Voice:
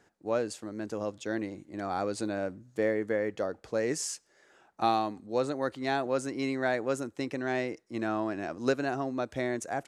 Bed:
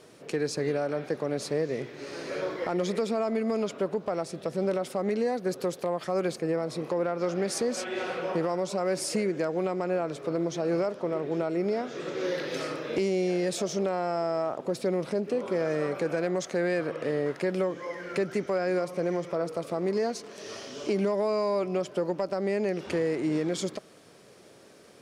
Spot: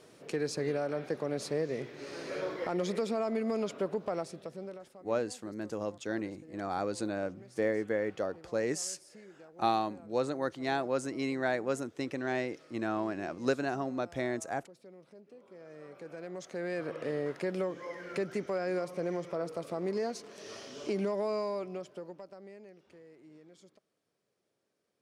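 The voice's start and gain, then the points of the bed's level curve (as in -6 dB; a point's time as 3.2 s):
4.80 s, -2.0 dB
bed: 4.18 s -4 dB
5.1 s -25.5 dB
15.45 s -25.5 dB
16.91 s -5.5 dB
21.36 s -5.5 dB
22.91 s -28 dB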